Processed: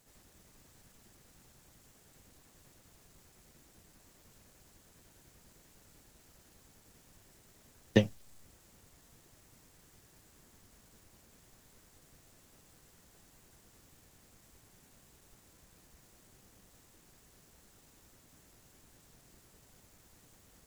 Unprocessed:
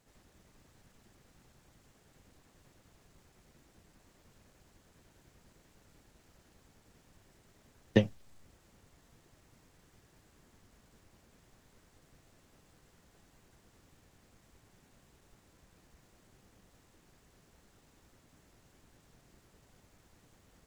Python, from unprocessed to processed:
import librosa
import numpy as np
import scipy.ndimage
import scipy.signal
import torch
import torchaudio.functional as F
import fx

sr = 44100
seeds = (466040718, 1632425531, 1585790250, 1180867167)

y = fx.high_shelf(x, sr, hz=6100.0, db=11.5)